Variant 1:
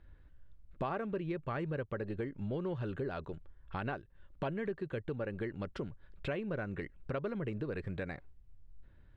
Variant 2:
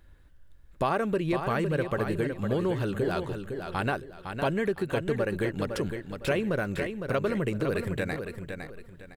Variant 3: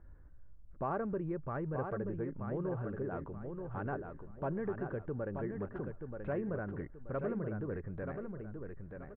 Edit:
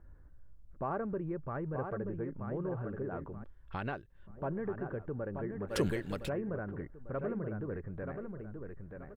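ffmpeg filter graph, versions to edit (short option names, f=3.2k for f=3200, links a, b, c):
-filter_complex "[2:a]asplit=3[a][b][c];[a]atrim=end=3.442[d];[0:a]atrim=start=3.438:end=4.272[e];[b]atrim=start=4.268:end=5.77[f];[1:a]atrim=start=5.67:end=6.3[g];[c]atrim=start=6.2[h];[d][e]acrossfade=d=0.004:c1=hsin:c2=hsin[i];[i][f]acrossfade=d=0.004:c1=hsin:c2=hsin[j];[j][g]acrossfade=d=0.1:c1=tri:c2=tri[k];[k][h]acrossfade=d=0.1:c1=tri:c2=tri"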